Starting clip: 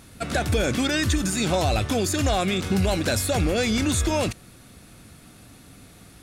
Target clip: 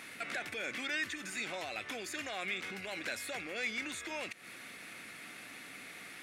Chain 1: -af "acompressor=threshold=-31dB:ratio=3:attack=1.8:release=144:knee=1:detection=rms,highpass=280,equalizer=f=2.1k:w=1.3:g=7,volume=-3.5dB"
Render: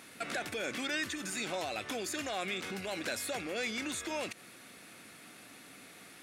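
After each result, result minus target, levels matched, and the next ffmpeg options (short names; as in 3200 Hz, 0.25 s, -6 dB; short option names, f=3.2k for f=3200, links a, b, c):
compressor: peak gain reduction -6.5 dB; 2000 Hz band -4.0 dB
-af "acompressor=threshold=-40.5dB:ratio=3:attack=1.8:release=144:knee=1:detection=rms,highpass=280,equalizer=f=2.1k:w=1.3:g=7,volume=-3.5dB"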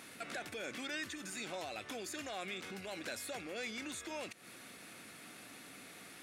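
2000 Hz band -2.5 dB
-af "acompressor=threshold=-40.5dB:ratio=3:attack=1.8:release=144:knee=1:detection=rms,highpass=280,equalizer=f=2.1k:w=1.3:g=16,volume=-3.5dB"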